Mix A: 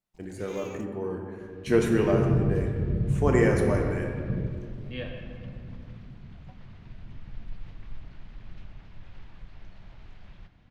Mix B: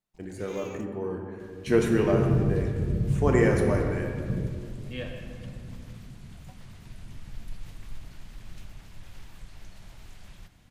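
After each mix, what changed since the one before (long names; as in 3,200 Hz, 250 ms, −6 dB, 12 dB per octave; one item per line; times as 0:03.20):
second sound: remove high-frequency loss of the air 250 metres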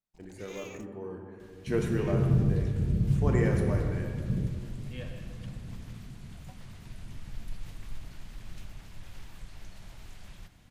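speech −7.5 dB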